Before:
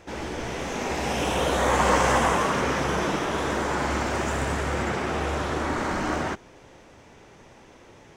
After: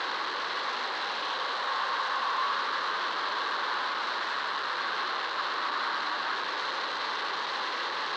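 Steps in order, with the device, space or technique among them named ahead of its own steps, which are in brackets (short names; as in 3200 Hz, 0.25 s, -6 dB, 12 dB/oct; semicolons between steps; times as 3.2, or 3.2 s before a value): home computer beeper (infinite clipping; speaker cabinet 670–4200 Hz, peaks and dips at 680 Hz -6 dB, 1100 Hz +9 dB, 1600 Hz +5 dB, 2400 Hz -6 dB, 4100 Hz +9 dB); gain -4.5 dB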